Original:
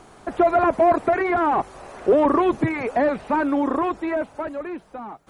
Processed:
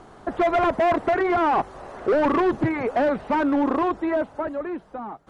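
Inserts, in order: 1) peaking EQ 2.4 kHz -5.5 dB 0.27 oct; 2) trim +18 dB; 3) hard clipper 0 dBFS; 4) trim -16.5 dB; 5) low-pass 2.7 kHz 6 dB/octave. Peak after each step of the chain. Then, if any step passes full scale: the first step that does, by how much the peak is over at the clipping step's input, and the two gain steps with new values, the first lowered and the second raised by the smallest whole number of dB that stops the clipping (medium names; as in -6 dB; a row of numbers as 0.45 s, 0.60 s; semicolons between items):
-8.0 dBFS, +10.0 dBFS, 0.0 dBFS, -16.5 dBFS, -16.5 dBFS; step 2, 10.0 dB; step 2 +8 dB, step 4 -6.5 dB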